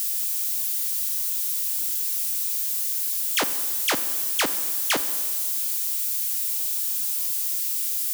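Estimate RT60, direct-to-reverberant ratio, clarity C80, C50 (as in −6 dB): 1.8 s, 11.0 dB, 13.5 dB, 12.5 dB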